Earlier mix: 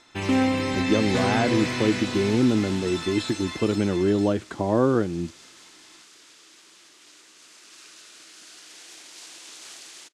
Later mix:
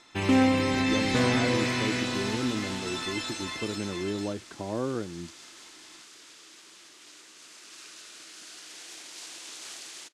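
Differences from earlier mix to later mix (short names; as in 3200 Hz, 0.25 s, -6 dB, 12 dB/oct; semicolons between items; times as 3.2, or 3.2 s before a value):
speech -10.5 dB; second sound: send +6.0 dB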